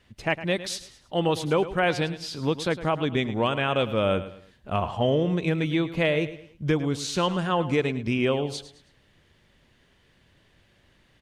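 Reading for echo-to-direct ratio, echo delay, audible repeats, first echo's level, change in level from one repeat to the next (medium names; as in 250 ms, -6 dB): -13.5 dB, 107 ms, 3, -14.0 dB, -9.0 dB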